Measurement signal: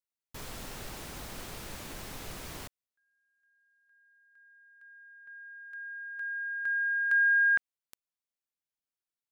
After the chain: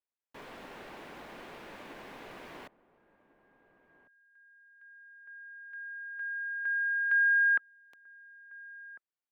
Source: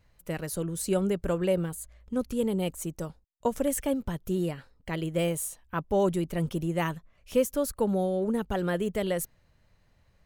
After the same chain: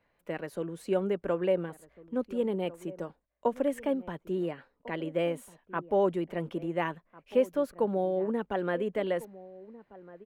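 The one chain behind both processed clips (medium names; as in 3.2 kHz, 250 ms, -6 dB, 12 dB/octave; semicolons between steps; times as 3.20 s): three-band isolator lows -19 dB, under 210 Hz, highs -20 dB, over 3 kHz; band-stop 1.3 kHz, Q 17; echo from a far wall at 240 m, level -18 dB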